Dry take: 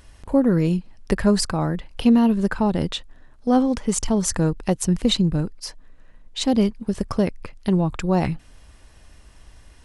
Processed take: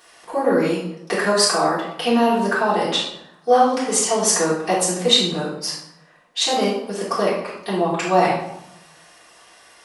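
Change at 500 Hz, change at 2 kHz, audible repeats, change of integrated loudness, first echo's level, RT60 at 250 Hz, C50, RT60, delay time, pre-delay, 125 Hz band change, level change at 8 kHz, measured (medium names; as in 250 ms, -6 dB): +5.5 dB, +9.5 dB, no echo, +2.0 dB, no echo, 1.1 s, 2.0 dB, 0.80 s, no echo, 3 ms, -8.0 dB, +8.0 dB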